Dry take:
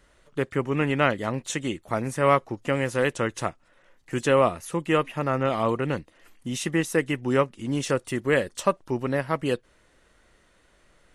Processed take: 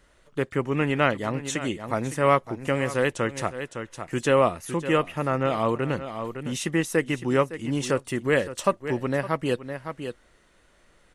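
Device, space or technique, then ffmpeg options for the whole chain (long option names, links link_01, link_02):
ducked delay: -filter_complex "[0:a]asplit=3[link_01][link_02][link_03];[link_02]adelay=560,volume=-8dB[link_04];[link_03]apad=whole_len=516362[link_05];[link_04][link_05]sidechaincompress=threshold=-32dB:ratio=4:attack=7.3:release=165[link_06];[link_01][link_06]amix=inputs=2:normalize=0"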